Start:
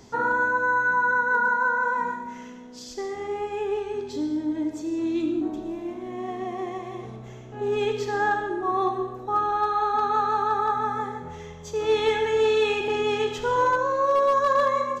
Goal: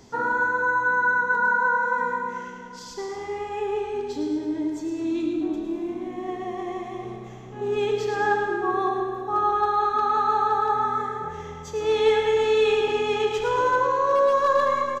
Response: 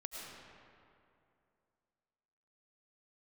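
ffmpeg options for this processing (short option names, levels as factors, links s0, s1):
-filter_complex "[0:a]aecho=1:1:108|216|324|432|540|648|756:0.376|0.21|0.118|0.066|0.037|0.0207|0.0116,asplit=2[s0][s1];[1:a]atrim=start_sample=2205[s2];[s1][s2]afir=irnorm=-1:irlink=0,volume=0.944[s3];[s0][s3]amix=inputs=2:normalize=0,volume=0.596"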